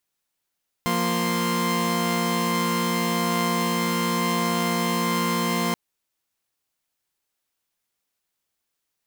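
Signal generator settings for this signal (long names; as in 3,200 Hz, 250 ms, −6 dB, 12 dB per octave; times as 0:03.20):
held notes F3/A#3/C6 saw, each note −23.5 dBFS 4.88 s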